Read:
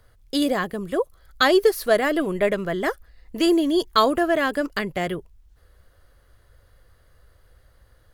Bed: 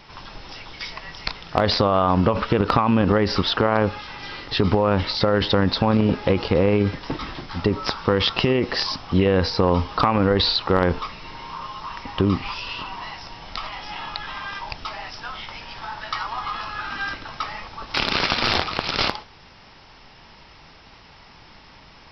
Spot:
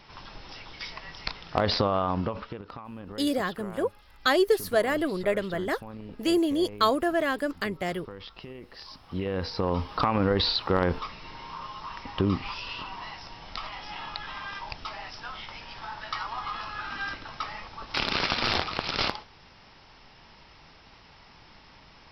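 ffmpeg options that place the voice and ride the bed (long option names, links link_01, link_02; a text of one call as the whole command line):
ffmpeg -i stem1.wav -i stem2.wav -filter_complex "[0:a]adelay=2850,volume=-5dB[link_01];[1:a]volume=12.5dB,afade=type=out:start_time=1.79:duration=0.83:silence=0.125893,afade=type=in:start_time=8.75:duration=1.42:silence=0.125893[link_02];[link_01][link_02]amix=inputs=2:normalize=0" out.wav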